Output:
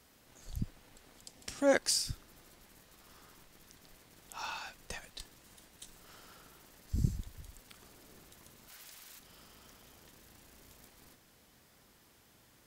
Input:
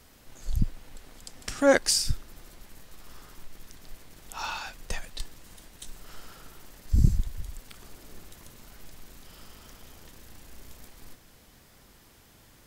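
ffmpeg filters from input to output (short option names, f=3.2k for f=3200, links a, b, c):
-filter_complex "[0:a]asplit=3[a][b][c];[a]afade=t=out:st=8.68:d=0.02[d];[b]tiltshelf=f=720:g=-8.5,afade=t=in:st=8.68:d=0.02,afade=t=out:st=9.18:d=0.02[e];[c]afade=t=in:st=9.18:d=0.02[f];[d][e][f]amix=inputs=3:normalize=0,highpass=f=99:p=1,asettb=1/sr,asplit=3[g][h][i];[g]atrim=end=1.234[j];[h]atrim=start=1.23:end=1.73,asetpts=PTS-STARTPTS,afade=t=in:d=0.004:c=qsin,afade=t=out:st=0.496:d=0.004:c=qsin,equalizer=f=1.4k:w=1.9:g=-6[k];[i]atrim=start=1.726[l];[j][k]acrossfade=d=0.004:c1=hsin:c2=qsin[m];[m][l]acrossfade=d=0.004:c1=qsin:c2=hsin,volume=-6.5dB"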